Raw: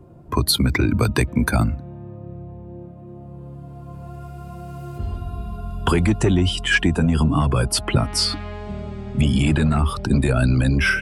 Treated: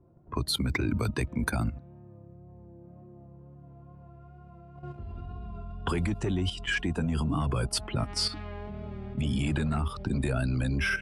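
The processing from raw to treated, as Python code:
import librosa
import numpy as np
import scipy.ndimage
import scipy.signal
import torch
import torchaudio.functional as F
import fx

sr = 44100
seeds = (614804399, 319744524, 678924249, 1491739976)

y = fx.wow_flutter(x, sr, seeds[0], rate_hz=2.1, depth_cents=28.0)
y = fx.level_steps(y, sr, step_db=11)
y = fx.env_lowpass(y, sr, base_hz=1600.0, full_db=-18.5)
y = y * librosa.db_to_amplitude(-5.5)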